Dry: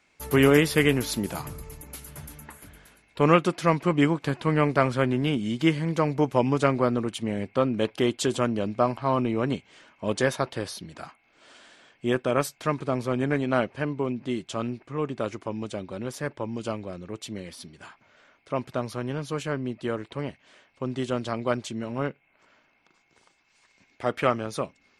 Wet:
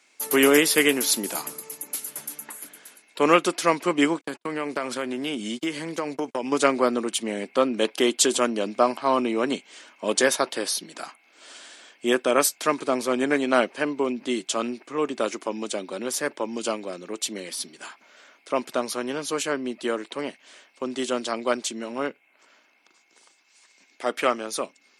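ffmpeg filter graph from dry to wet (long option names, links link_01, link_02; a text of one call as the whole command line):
ffmpeg -i in.wav -filter_complex "[0:a]asettb=1/sr,asplit=3[link_01][link_02][link_03];[link_01]atrim=end=4.214[link_04];[link_02]atrim=start=4.21:end=6.52,asetpts=PTS-STARTPTS,afade=type=in:duration=0.004:curve=qsin,afade=type=out:start_time=2.306:duration=0.004:curve=qsin,agate=range=-48dB:threshold=-34dB:ratio=16:release=100:detection=peak,acompressor=threshold=-24dB:ratio=6:attack=3.2:release=140:knee=1:detection=peak[link_05];[link_03]atrim=start=6.516[link_06];[link_04][link_05]acrossfade=duration=0.004:curve1=hsin:curve2=qsin[link_07];[link_07][link_06]acrossfade=duration=0.004:curve1=qsin:curve2=hsin,dynaudnorm=framelen=860:gausssize=13:maxgain=3.5dB,highpass=frequency=240:width=0.5412,highpass=frequency=240:width=1.3066,equalizer=frequency=9700:width_type=o:width=2.3:gain=11,volume=1dB" out.wav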